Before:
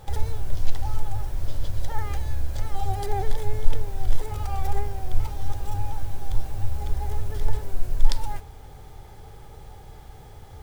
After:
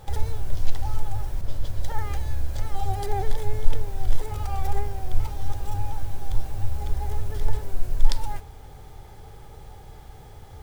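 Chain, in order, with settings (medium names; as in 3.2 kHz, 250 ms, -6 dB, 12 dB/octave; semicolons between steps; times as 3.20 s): 1.41–1.92 s: three bands expanded up and down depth 100%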